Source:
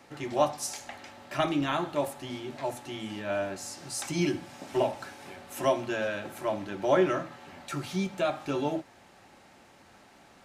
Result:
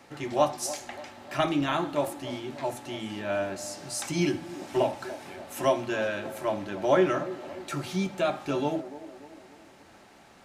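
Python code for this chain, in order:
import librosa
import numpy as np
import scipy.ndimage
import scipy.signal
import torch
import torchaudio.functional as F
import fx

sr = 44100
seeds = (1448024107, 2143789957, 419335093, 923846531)

y = fx.echo_wet_bandpass(x, sr, ms=291, feedback_pct=49, hz=440.0, wet_db=-13.5)
y = y * 10.0 ** (1.5 / 20.0)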